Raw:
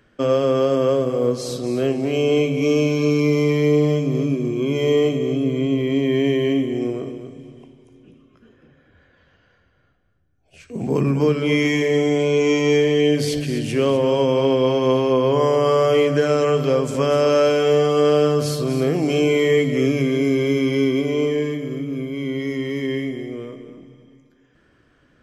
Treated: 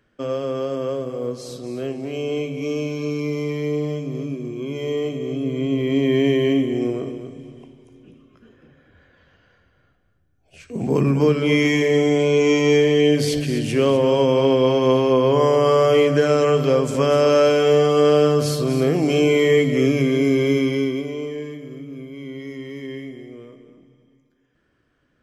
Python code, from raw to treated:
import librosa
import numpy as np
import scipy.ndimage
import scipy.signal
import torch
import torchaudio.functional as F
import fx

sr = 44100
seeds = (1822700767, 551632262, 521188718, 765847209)

y = fx.gain(x, sr, db=fx.line((5.0, -7.0), (6.04, 1.0), (20.56, 1.0), (21.21, -8.5)))